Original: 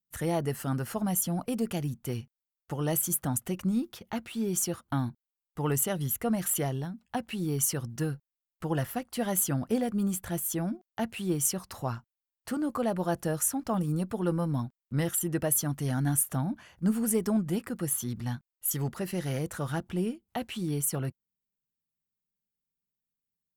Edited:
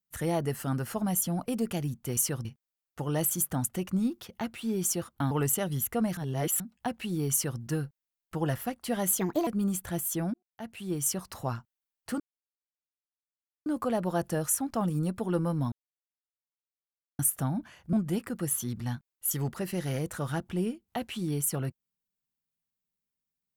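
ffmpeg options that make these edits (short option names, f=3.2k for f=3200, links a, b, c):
-filter_complex "[0:a]asplit=13[a][b][c][d][e][f][g][h][i][j][k][l][m];[a]atrim=end=2.172[n];[b]atrim=start=7.608:end=7.892[o];[c]atrim=start=2.168:end=5.032[p];[d]atrim=start=5.598:end=6.462[q];[e]atrim=start=6.458:end=6.892,asetpts=PTS-STARTPTS,areverse[r];[f]atrim=start=6.888:end=9.484[s];[g]atrim=start=9.48:end=9.86,asetpts=PTS-STARTPTS,asetrate=59976,aresample=44100,atrim=end_sample=12322,asetpts=PTS-STARTPTS[t];[h]atrim=start=9.856:end=10.73,asetpts=PTS-STARTPTS,afade=t=out:st=0.87:d=0.004:c=hsin[u];[i]atrim=start=10.73:end=12.59,asetpts=PTS-STARTPTS,afade=t=in:d=0.86,afade=t=out:st=1.856:d=0.004:c=hsin,apad=pad_dur=1.46[v];[j]atrim=start=12.59:end=14.65,asetpts=PTS-STARTPTS,afade=t=in:d=0.004:c=hsin,afade=t=out:st=2.056:d=0.004:c=hsin[w];[k]atrim=start=14.65:end=16.12,asetpts=PTS-STARTPTS,volume=0[x];[l]atrim=start=16.12:end=16.862,asetpts=PTS-STARTPTS,afade=t=in:d=0.004:c=hsin[y];[m]atrim=start=17.328[z];[n][o]acrossfade=d=0.004:c1=hsin:c2=hsin[aa];[aa][p]acrossfade=d=0.004:c1=hsin:c2=hsin[ab];[ab][q]acrossfade=d=0.004:c1=hsin:c2=hsin[ac];[ac][r]acrossfade=d=0.004:c1=hsin:c2=hsin[ad];[ad][s]acrossfade=d=0.004:c1=hsin:c2=hsin[ae];[ae][t]acrossfade=d=0.004:c1=hsin:c2=hsin[af];[u][v][w][x][y]concat=n=5:v=0:a=1[ag];[af][ag]acrossfade=d=0.004:c1=hsin:c2=hsin[ah];[ah][z]acrossfade=d=0.004:c1=hsin:c2=hsin"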